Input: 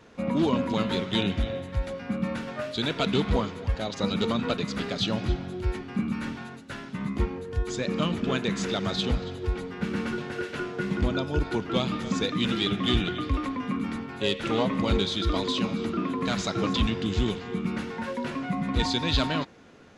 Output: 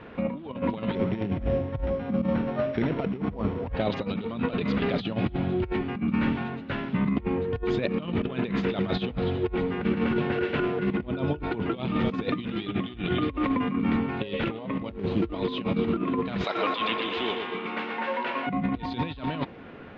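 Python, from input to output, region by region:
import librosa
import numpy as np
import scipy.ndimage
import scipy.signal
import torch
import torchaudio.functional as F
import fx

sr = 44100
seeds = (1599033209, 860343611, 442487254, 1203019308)

y = fx.chain(x, sr, fx.sample_sort(block=8),
    fx.spacing_loss(db_at_10k=27),
    fx.hum_notches(base_hz=60, count=5), at=(0.95, 3.73))
y = fx.chain(y, sr, fx.median_filter(points=25),
    fx.high_shelf(hz=8700.0, db=11.0), at=(14.89, 15.34))
y = fx.chain(y, sr, fx.highpass(hz=640.0, slope=12),
    fx.echo_filtered(ms=119, feedback_pct=64, hz=4600.0, wet_db=-6.0), at=(16.44, 18.47))
y = fx.over_compress(y, sr, threshold_db=-31.0, ratio=-0.5)
y = scipy.signal.sosfilt(scipy.signal.butter(4, 3000.0, 'lowpass', fs=sr, output='sos'), y)
y = fx.dynamic_eq(y, sr, hz=1500.0, q=1.7, threshold_db=-51.0, ratio=4.0, max_db=-5)
y = y * 10.0 ** (5.0 / 20.0)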